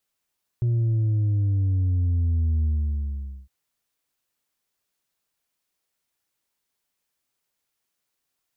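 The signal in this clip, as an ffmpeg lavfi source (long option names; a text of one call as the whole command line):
ffmpeg -f lavfi -i "aevalsrc='0.106*clip((2.86-t)/0.84,0,1)*tanh(1.41*sin(2*PI*120*2.86/log(65/120)*(exp(log(65/120)*t/2.86)-1)))/tanh(1.41)':duration=2.86:sample_rate=44100" out.wav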